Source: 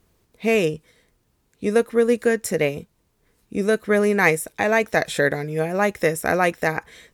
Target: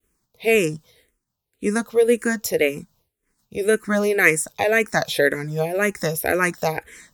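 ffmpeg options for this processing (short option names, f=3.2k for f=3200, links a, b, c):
-filter_complex "[0:a]highshelf=f=5.2k:g=8.5,agate=range=-33dB:threshold=-54dB:ratio=3:detection=peak,asplit=2[a][b];[b]afreqshift=-1.9[c];[a][c]amix=inputs=2:normalize=1,volume=2.5dB"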